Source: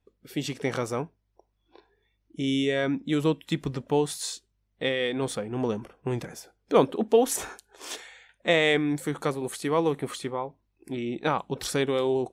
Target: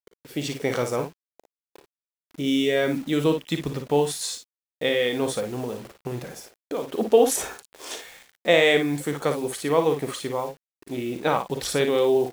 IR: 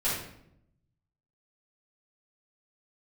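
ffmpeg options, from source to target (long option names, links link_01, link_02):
-filter_complex "[0:a]equalizer=frequency=560:width_type=o:width=1:gain=5,asettb=1/sr,asplit=3[link_01][link_02][link_03];[link_01]atrim=end=5.444[link_04];[link_02]atrim=start=5.44:end=6.92,asetpts=PTS-STARTPTS,afade=type=in:duration=0.004:curve=qsin,afade=type=out:start_time=1.476:duration=0.004:curve=qsin,acompressor=threshold=-28dB:ratio=6[link_05];[link_03]atrim=start=6.916[link_06];[link_04][link_05]acrossfade=duration=0.004:curve1=hsin:curve2=qsin[link_07];[link_07][link_06]acrossfade=duration=0.004:curve1=qsin:curve2=hsin,acrusher=bits=7:mix=0:aa=0.000001,aecho=1:1:41|56:0.224|0.398,adynamicequalizer=threshold=0.0158:dfrequency=1600:dqfactor=0.7:tfrequency=1600:tqfactor=0.7:attack=5:release=100:ratio=0.375:range=1.5:mode=boostabove:tftype=highshelf"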